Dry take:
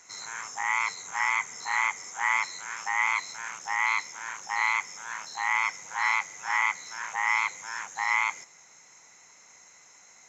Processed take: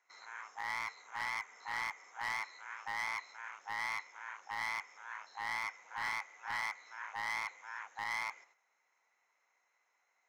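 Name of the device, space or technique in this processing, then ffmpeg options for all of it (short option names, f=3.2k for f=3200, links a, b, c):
walkie-talkie: -af "highpass=530,lowpass=2.6k,asoftclip=type=hard:threshold=-24.5dB,agate=range=-9dB:threshold=-56dB:ratio=16:detection=peak,volume=-8dB"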